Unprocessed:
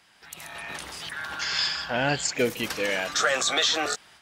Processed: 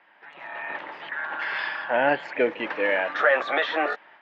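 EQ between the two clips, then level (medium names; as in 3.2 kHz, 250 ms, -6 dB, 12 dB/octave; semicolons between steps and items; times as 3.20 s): cabinet simulation 290–2600 Hz, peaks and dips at 310 Hz +5 dB, 580 Hz +7 dB, 910 Hz +8 dB, 1.8 kHz +6 dB; 0.0 dB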